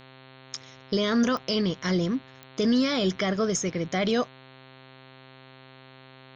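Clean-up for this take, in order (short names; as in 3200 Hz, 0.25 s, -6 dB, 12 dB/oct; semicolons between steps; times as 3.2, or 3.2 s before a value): de-click; de-hum 131.4 Hz, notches 33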